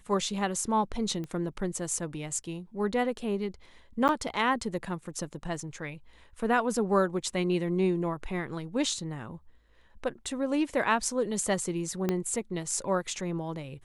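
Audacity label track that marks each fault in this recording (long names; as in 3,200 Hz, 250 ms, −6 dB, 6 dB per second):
1.240000	1.240000	click −26 dBFS
4.080000	4.090000	drop-out 9.2 ms
12.090000	12.090000	click −14 dBFS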